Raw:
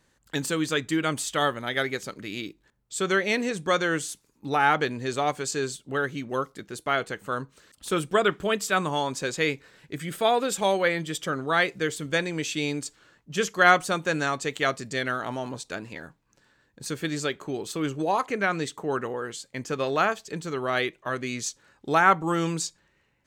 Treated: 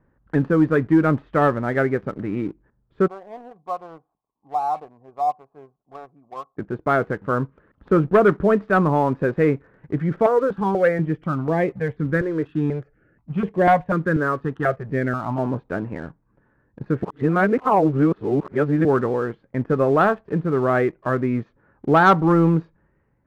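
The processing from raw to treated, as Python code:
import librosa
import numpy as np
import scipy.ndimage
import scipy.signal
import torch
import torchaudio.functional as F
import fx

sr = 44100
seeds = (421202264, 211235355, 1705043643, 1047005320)

y = fx.formant_cascade(x, sr, vowel='a', at=(3.06, 6.57), fade=0.02)
y = fx.phaser_held(y, sr, hz=4.1, low_hz=770.0, high_hz=4900.0, at=(10.26, 15.39))
y = fx.edit(y, sr, fx.reverse_span(start_s=17.03, length_s=1.82), tone=tone)
y = scipy.signal.sosfilt(scipy.signal.cheby2(4, 80, 8600.0, 'lowpass', fs=sr, output='sos'), y)
y = fx.low_shelf(y, sr, hz=450.0, db=8.5)
y = fx.leveller(y, sr, passes=1)
y = y * librosa.db_to_amplitude(1.5)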